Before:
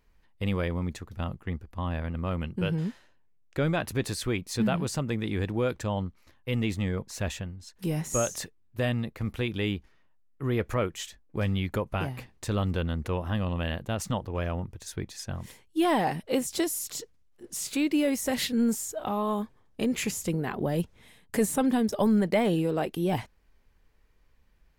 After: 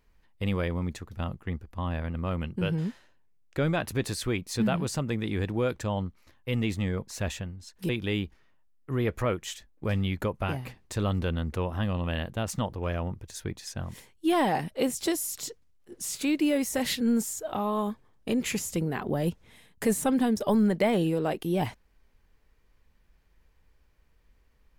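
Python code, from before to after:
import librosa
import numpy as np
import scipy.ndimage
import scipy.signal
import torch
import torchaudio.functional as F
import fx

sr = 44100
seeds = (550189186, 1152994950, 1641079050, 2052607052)

y = fx.edit(x, sr, fx.cut(start_s=7.89, length_s=1.52), tone=tone)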